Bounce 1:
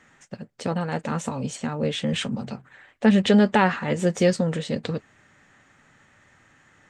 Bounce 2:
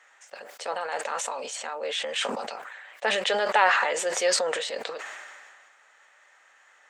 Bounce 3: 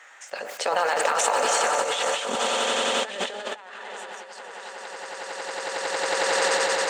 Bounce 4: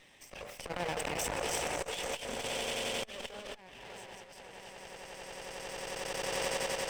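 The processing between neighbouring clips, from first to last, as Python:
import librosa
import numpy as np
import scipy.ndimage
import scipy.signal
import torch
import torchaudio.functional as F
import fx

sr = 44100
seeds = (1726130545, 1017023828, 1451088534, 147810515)

y1 = scipy.signal.sosfilt(scipy.signal.butter(4, 560.0, 'highpass', fs=sr, output='sos'), x)
y1 = fx.sustainer(y1, sr, db_per_s=30.0)
y2 = fx.echo_swell(y1, sr, ms=91, loudest=8, wet_db=-8.5)
y2 = fx.over_compress(y2, sr, threshold_db=-30.0, ratio=-0.5)
y2 = F.gain(torch.from_numpy(y2), 3.5).numpy()
y3 = fx.lower_of_two(y2, sr, delay_ms=0.36)
y3 = fx.transformer_sat(y3, sr, knee_hz=750.0)
y3 = F.gain(torch.from_numpy(y3), -8.5).numpy()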